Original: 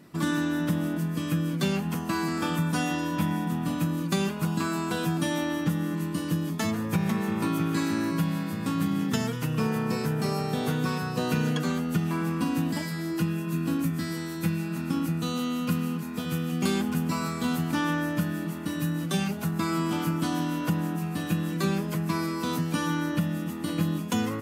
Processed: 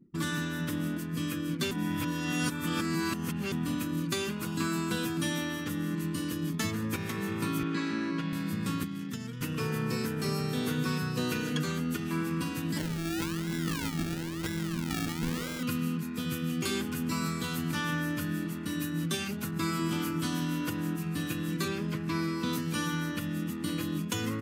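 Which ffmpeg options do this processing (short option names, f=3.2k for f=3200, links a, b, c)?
-filter_complex "[0:a]asettb=1/sr,asplit=3[a][b][c];[a]atrim=end=7.634[d];[b]atrim=start=7.63:end=8.33,asetpts=PTS-STARTPTS,afade=t=in:d=0.004:c=qsin,afade=t=out:st=0.696:d=0.004:c=qsin,highpass=220,lowpass=4k[e];[c]atrim=start=8.326[f];[d][e]acrossfade=d=0.004:c1=hsin:c2=qsin[g];[g][f]acrossfade=d=0.004:c1=qsin:c2=hsin,asettb=1/sr,asplit=3[h][i][j];[h]atrim=end=8.834[k];[i]atrim=start=8.83:end=9.41,asetpts=PTS-STARTPTS,afade=t=in:d=0.004:c=qsin,afade=t=out:st=0.576:d=0.004:c=qsin,acrossover=split=360|1300|4400[l][m][n][o];[l]acompressor=threshold=-38dB:ratio=3[p];[m]acompressor=threshold=-50dB:ratio=3[q];[n]acompressor=threshold=-51dB:ratio=3[r];[o]acompressor=threshold=-51dB:ratio=3[s];[p][q][r][s]amix=inputs=4:normalize=0[t];[j]atrim=start=9.406[u];[k][t]acrossfade=d=0.004:c1=hsin:c2=qsin[v];[v][u]acrossfade=d=0.004:c1=qsin:c2=hsin,asettb=1/sr,asplit=3[w][x][y];[w]atrim=end=12.784[z];[x]atrim=start=12.78:end=15.63,asetpts=PTS-STARTPTS,afade=t=in:d=0.004:c=qsin,afade=t=out:st=2.846:d=0.004:c=qsin,acrusher=samples=34:mix=1:aa=0.000001:lfo=1:lforange=20.4:lforate=1[aa];[y]atrim=start=15.626[ab];[z][aa]acrossfade=d=0.004:c1=hsin:c2=qsin[ac];[ac][ab]acrossfade=d=0.004:c1=qsin:c2=hsin,asettb=1/sr,asplit=3[ad][ae][af];[ad]atrim=end=21.684[ag];[ae]atrim=start=21.68:end=22.53,asetpts=PTS-STARTPTS,afade=t=in:d=0.004:c=qsin,afade=t=out:st=0.846:d=0.004:c=qsin,acrossover=split=5300[ah][ai];[ai]acompressor=threshold=-53dB:ratio=4:attack=1:release=60[aj];[ah][aj]amix=inputs=2:normalize=0[ak];[af]atrim=start=22.526[al];[ag][ak]acrossfade=d=0.004:c1=hsin:c2=qsin[am];[am][al]acrossfade=d=0.004:c1=qsin:c2=hsin,asplit=3[an][ao][ap];[an]atrim=end=1.712[aq];[ao]atrim=start=1.708:end=3.522,asetpts=PTS-STARTPTS,areverse[ar];[ap]atrim=start=3.518[as];[aq][ar]acrossfade=d=0.004:c1=hsin:c2=hsin[at];[at][as]acrossfade=d=0.004:c1=hsin:c2=hsin,afftfilt=real='re*lt(hypot(re,im),0.398)':imag='im*lt(hypot(re,im),0.398)':win_size=1024:overlap=0.75,anlmdn=0.0398,equalizer=f=720:t=o:w=0.99:g=-12"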